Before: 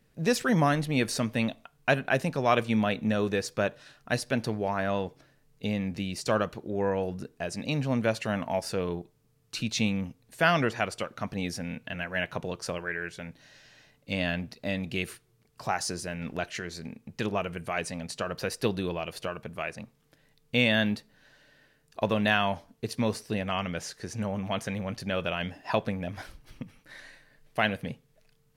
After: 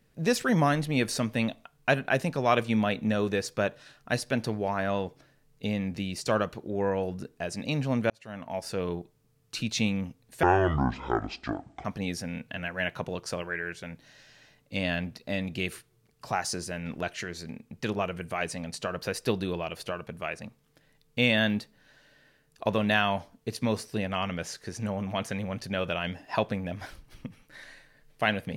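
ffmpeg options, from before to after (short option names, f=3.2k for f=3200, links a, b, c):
-filter_complex "[0:a]asplit=4[a][b][c][d];[a]atrim=end=8.1,asetpts=PTS-STARTPTS,afade=t=out:st=8.096:d=0.004:c=hsin[e];[b]atrim=start=8.1:end=10.434,asetpts=PTS-STARTPTS,afade=t=in:d=0.78[f];[c]atrim=start=10.43:end=11.21,asetpts=PTS-STARTPTS,asetrate=24255,aresample=44100[g];[d]atrim=start=11.206[h];[e][f]concat=n=2:v=0:a=1[i];[i][g]acrossfade=d=0.004:c1=hsin:c2=hsin[j];[j][h]acrossfade=d=0.004:c1=hsin:c2=hsin"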